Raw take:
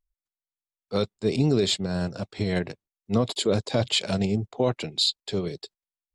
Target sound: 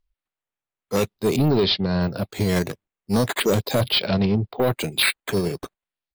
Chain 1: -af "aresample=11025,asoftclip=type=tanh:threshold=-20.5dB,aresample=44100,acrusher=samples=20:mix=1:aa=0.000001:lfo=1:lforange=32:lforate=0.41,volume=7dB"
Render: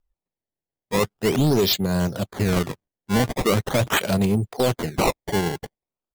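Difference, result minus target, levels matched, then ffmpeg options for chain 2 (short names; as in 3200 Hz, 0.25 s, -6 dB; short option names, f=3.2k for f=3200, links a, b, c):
decimation with a swept rate: distortion +6 dB
-af "aresample=11025,asoftclip=type=tanh:threshold=-20.5dB,aresample=44100,acrusher=samples=5:mix=1:aa=0.000001:lfo=1:lforange=8:lforate=0.41,volume=7dB"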